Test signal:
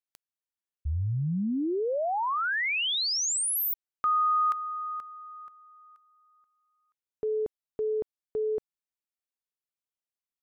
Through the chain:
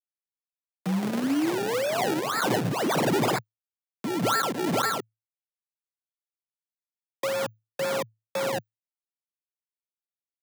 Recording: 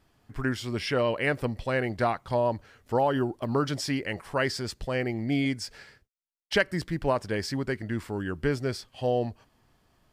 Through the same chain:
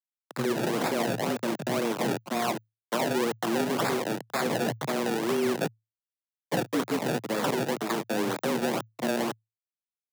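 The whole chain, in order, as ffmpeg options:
-filter_complex "[0:a]acrossover=split=250|4300[s0][s1][s2];[s1]acompressor=threshold=0.0158:ratio=5:attack=25:release=93:knee=1:detection=rms[s3];[s0][s3][s2]amix=inputs=3:normalize=0,asplit=2[s4][s5];[s5]adelay=50,volume=0.211[s6];[s4][s6]amix=inputs=2:normalize=0,aresample=16000,acrusher=bits=5:mix=0:aa=0.000001,aresample=44100,acrossover=split=510[s7][s8];[s7]aeval=exprs='val(0)*(1-0.5/2+0.5/2*cos(2*PI*2.2*n/s))':c=same[s9];[s8]aeval=exprs='val(0)*(1-0.5/2-0.5/2*cos(2*PI*2.2*n/s))':c=same[s10];[s9][s10]amix=inputs=2:normalize=0,adynamicequalizer=threshold=0.00282:dfrequency=5300:dqfactor=3.1:tfrequency=5300:tqfactor=3.1:attack=5:release=100:ratio=0.375:range=3:mode=boostabove:tftype=bell,acontrast=32,lowshelf=f=180:g=-8,acrusher=samples=30:mix=1:aa=0.000001:lfo=1:lforange=30:lforate=2,alimiter=limit=0.0708:level=0:latency=1:release=13,afreqshift=110,volume=1.5"

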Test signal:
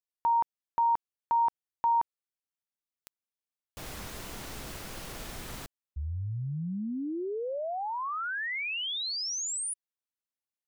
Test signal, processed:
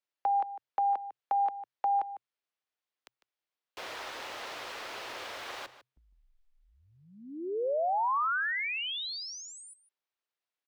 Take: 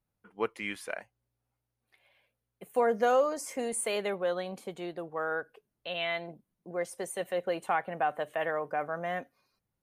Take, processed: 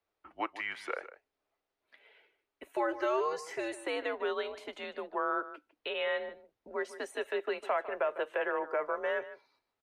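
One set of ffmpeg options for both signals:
-filter_complex "[0:a]afreqshift=-130,acrossover=split=410|1300[s0][s1][s2];[s0]acompressor=threshold=0.00178:ratio=4[s3];[s1]acompressor=threshold=0.0251:ratio=4[s4];[s2]acompressor=threshold=0.00891:ratio=4[s5];[s3][s4][s5]amix=inputs=3:normalize=0,asplit=2[s6][s7];[s7]alimiter=level_in=2.51:limit=0.0631:level=0:latency=1:release=309,volume=0.398,volume=1[s8];[s6][s8]amix=inputs=2:normalize=0,acrossover=split=280 4900:gain=0.1 1 0.126[s9][s10][s11];[s9][s10][s11]amix=inputs=3:normalize=0,asplit=2[s12][s13];[s13]adelay=151.6,volume=0.2,highshelf=f=4000:g=-3.41[s14];[s12][s14]amix=inputs=2:normalize=0"

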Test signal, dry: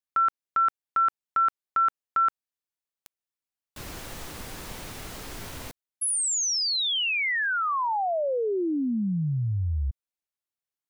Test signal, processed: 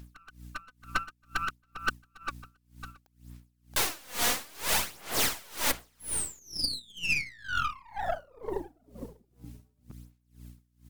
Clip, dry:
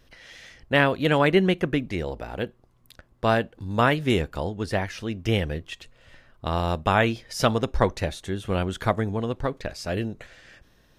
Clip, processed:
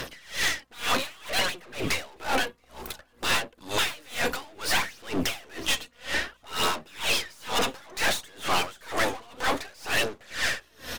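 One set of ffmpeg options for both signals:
-filter_complex "[0:a]aemphasis=mode=production:type=cd,afftfilt=real='re*lt(hypot(re,im),0.1)':imag='im*lt(hypot(re,im),0.1)':win_size=1024:overlap=0.75,highshelf=f=7100:g=4.5,acrossover=split=290|3400[s0][s1][s2];[s0]acompressor=threshold=0.00501:ratio=10:attack=6.2:release=457:knee=2.83:detection=peak[s3];[s3][s1][s2]amix=inputs=3:normalize=0,asplit=2[s4][s5];[s5]highpass=f=720:p=1,volume=50.1,asoftclip=type=tanh:threshold=0.237[s6];[s4][s6]amix=inputs=2:normalize=0,lowpass=f=3000:p=1,volume=0.501,aphaser=in_gain=1:out_gain=1:delay=4.2:decay=0.51:speed=0.59:type=sinusoidal,aeval=exprs='val(0)+0.00562*(sin(2*PI*60*n/s)+sin(2*PI*2*60*n/s)/2+sin(2*PI*3*60*n/s)/3+sin(2*PI*4*60*n/s)/4+sin(2*PI*5*60*n/s)/5)':c=same,aeval=exprs='(tanh(20*val(0)+0.7)-tanh(0.7))/20':c=same,asplit=2[s7][s8];[s8]aecho=0:1:675:0.141[s9];[s7][s9]amix=inputs=2:normalize=0,aeval=exprs='val(0)*pow(10,-28*(0.5-0.5*cos(2*PI*2.1*n/s))/20)':c=same,volume=1.88"

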